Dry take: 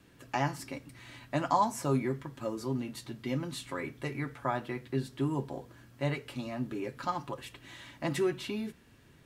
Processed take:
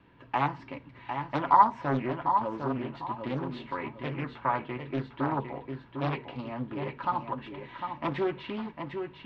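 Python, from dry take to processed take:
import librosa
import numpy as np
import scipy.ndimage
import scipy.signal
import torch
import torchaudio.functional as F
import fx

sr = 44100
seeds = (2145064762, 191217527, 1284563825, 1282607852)

p1 = scipy.signal.sosfilt(scipy.signal.butter(4, 3200.0, 'lowpass', fs=sr, output='sos'), x)
p2 = fx.peak_eq(p1, sr, hz=950.0, db=11.5, octaves=0.27)
p3 = p2 + fx.echo_feedback(p2, sr, ms=753, feedback_pct=29, wet_db=-6.5, dry=0)
y = fx.doppler_dist(p3, sr, depth_ms=0.63)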